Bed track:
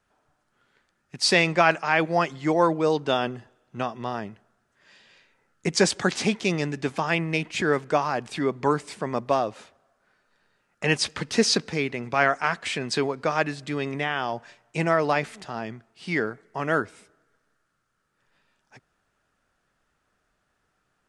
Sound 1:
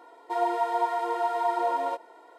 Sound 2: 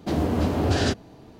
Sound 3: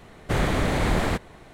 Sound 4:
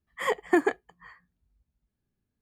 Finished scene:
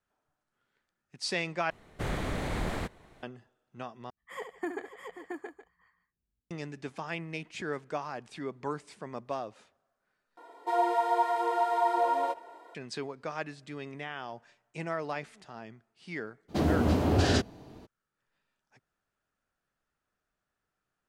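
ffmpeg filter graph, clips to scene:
ffmpeg -i bed.wav -i cue0.wav -i cue1.wav -i cue2.wav -i cue3.wav -filter_complex "[0:a]volume=-12.5dB[link_01];[4:a]aecho=1:1:70|159|535|674|821:0.376|0.106|0.224|0.596|0.178[link_02];[1:a]asplit=2[link_03][link_04];[link_04]adelay=260,highpass=300,lowpass=3400,asoftclip=type=hard:threshold=-24dB,volume=-25dB[link_05];[link_03][link_05]amix=inputs=2:normalize=0[link_06];[link_01]asplit=4[link_07][link_08][link_09][link_10];[link_07]atrim=end=1.704[link_11];[3:a]atrim=end=1.53,asetpts=PTS-STARTPTS,volume=-10dB[link_12];[link_08]atrim=start=3.226:end=4.104[link_13];[link_02]atrim=end=2.41,asetpts=PTS-STARTPTS,volume=-13.5dB[link_14];[link_09]atrim=start=6.506:end=10.374[link_15];[link_06]atrim=end=2.38,asetpts=PTS-STARTPTS,volume=-0.5dB[link_16];[link_10]atrim=start=12.746[link_17];[2:a]atrim=end=1.39,asetpts=PTS-STARTPTS,volume=-2.5dB,afade=type=in:duration=0.02,afade=type=out:start_time=1.37:duration=0.02,adelay=16480[link_18];[link_11][link_12]acrossfade=duration=0.004:curve1=hsin:curve2=hsin[link_19];[link_19][link_13]acrossfade=duration=0.004:curve1=hsin:curve2=hsin[link_20];[link_20][link_14]acrossfade=duration=0.004:curve1=hsin:curve2=hsin[link_21];[link_21][link_15]acrossfade=duration=0.004:curve1=hsin:curve2=hsin[link_22];[link_22][link_16]acrossfade=duration=0.004:curve1=hsin:curve2=hsin[link_23];[link_23][link_17]acrossfade=duration=0.004:curve1=hsin:curve2=hsin[link_24];[link_24][link_18]amix=inputs=2:normalize=0" out.wav

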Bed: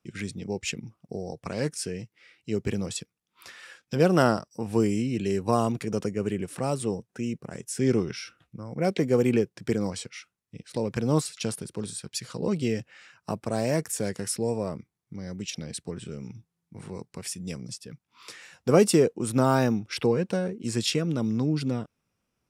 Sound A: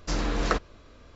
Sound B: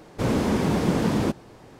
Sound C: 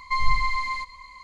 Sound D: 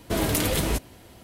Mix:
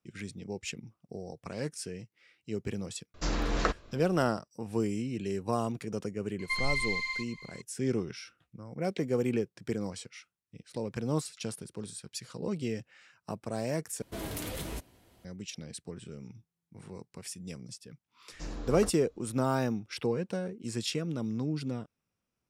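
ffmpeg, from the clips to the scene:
ffmpeg -i bed.wav -i cue0.wav -i cue1.wav -i cue2.wav -i cue3.wav -filter_complex "[1:a]asplit=2[link_01][link_02];[0:a]volume=-7dB[link_03];[3:a]highshelf=frequency=1600:width_type=q:width=1.5:gain=10.5[link_04];[4:a]asoftclip=type=tanh:threshold=-12dB[link_05];[link_02]equalizer=frequency=2100:width=0.58:gain=-9.5[link_06];[link_03]asplit=2[link_07][link_08];[link_07]atrim=end=14.024[link_09];[link_05]atrim=end=1.23,asetpts=PTS-STARTPTS,volume=-13dB[link_10];[link_08]atrim=start=15.246[link_11];[link_01]atrim=end=1.15,asetpts=PTS-STARTPTS,volume=-3dB,afade=type=in:duration=0.004:curve=hsin,afade=type=out:start_time=1.146:duration=0.004:curve=hsin,adelay=3140[link_12];[link_04]atrim=end=1.23,asetpts=PTS-STARTPTS,volume=-13.5dB,afade=type=in:duration=0.004:curve=hsin,afade=type=out:start_time=1.226:duration=0.004:curve=hsin,adelay=6390[link_13];[link_06]atrim=end=1.15,asetpts=PTS-STARTPTS,volume=-11dB,afade=type=in:duration=0.004:curve=hsin,afade=type=out:start_time=1.146:duration=0.004:curve=hsin,adelay=18320[link_14];[link_09][link_10]acrossfade=duration=0.004:curve1=hsin:curve2=hsin[link_15];[link_15][link_11]acrossfade=duration=0.004:curve1=hsin:curve2=hsin[link_16];[link_16][link_12][link_13][link_14]amix=inputs=4:normalize=0" out.wav

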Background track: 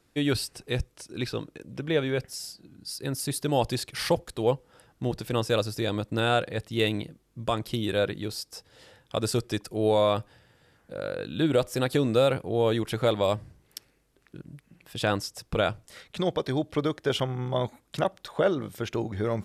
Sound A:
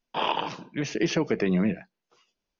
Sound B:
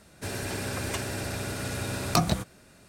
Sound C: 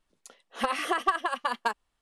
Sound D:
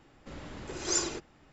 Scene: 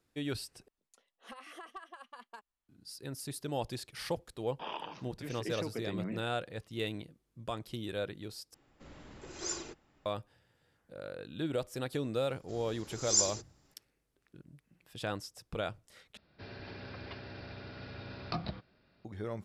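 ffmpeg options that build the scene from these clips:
ffmpeg -i bed.wav -i cue0.wav -i cue1.wav -i cue2.wav -i cue3.wav -filter_complex "[4:a]asplit=2[link_01][link_02];[0:a]volume=-11dB[link_03];[3:a]alimiter=limit=-22dB:level=0:latency=1:release=335[link_04];[link_02]highshelf=frequency=3800:width_type=q:width=1.5:gain=11[link_05];[2:a]aresample=11025,aresample=44100[link_06];[link_03]asplit=4[link_07][link_08][link_09][link_10];[link_07]atrim=end=0.684[link_11];[link_04]atrim=end=2.01,asetpts=PTS-STARTPTS,volume=-15.5dB[link_12];[link_08]atrim=start=2.686:end=8.544[link_13];[link_01]atrim=end=1.52,asetpts=PTS-STARTPTS,volume=-8.5dB[link_14];[link_09]atrim=start=10.056:end=16.174[link_15];[link_06]atrim=end=2.88,asetpts=PTS-STARTPTS,volume=-13dB[link_16];[link_10]atrim=start=19.046[link_17];[1:a]atrim=end=2.59,asetpts=PTS-STARTPTS,volume=-14.5dB,afade=type=in:duration=0.004:curve=hsin,afade=type=out:start_time=2.586:duration=0.004:curve=hsin,adelay=196245S[link_18];[link_05]atrim=end=1.52,asetpts=PTS-STARTPTS,volume=-10.5dB,afade=type=in:duration=0.004:curve=hsin,afade=type=out:start_time=1.516:duration=0.004:curve=hsin,adelay=12220[link_19];[link_11][link_12]acrossfade=duration=0.004:curve1=hsin:curve2=hsin[link_20];[link_20][link_13]acrossfade=duration=0.004:curve1=hsin:curve2=hsin[link_21];[link_21][link_14]acrossfade=duration=0.004:curve1=hsin:curve2=hsin[link_22];[link_22][link_15]acrossfade=duration=0.004:curve1=hsin:curve2=hsin[link_23];[link_23][link_16]acrossfade=duration=0.004:curve1=hsin:curve2=hsin[link_24];[link_24][link_17]acrossfade=duration=0.004:curve1=hsin:curve2=hsin[link_25];[link_25][link_18][link_19]amix=inputs=3:normalize=0" out.wav

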